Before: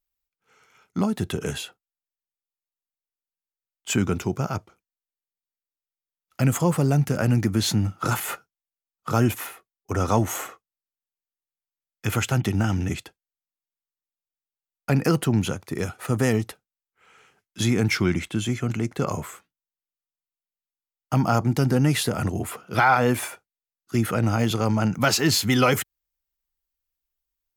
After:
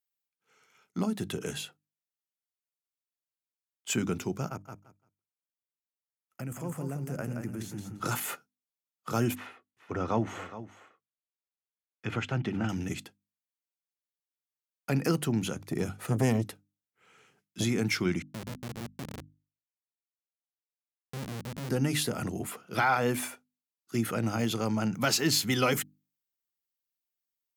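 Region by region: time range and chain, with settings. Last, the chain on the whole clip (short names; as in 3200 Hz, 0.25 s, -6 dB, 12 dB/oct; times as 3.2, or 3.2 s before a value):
4.48–8 bell 4000 Hz -12.5 dB 0.86 oct + level quantiser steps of 14 dB + feedback echo 0.172 s, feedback 19%, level -6 dB
9.35–12.69 LPF 2900 Hz + echo 0.417 s -14.5 dB
15.56–17.64 low shelf 300 Hz +9 dB + core saturation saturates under 370 Hz
18.22–21.69 Chebyshev band-stop 250–9000 Hz + Schmitt trigger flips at -26 dBFS
whole clip: HPF 140 Hz 12 dB/oct; bell 910 Hz -4 dB 2.4 oct; notches 50/100/150/200/250/300 Hz; gain -4 dB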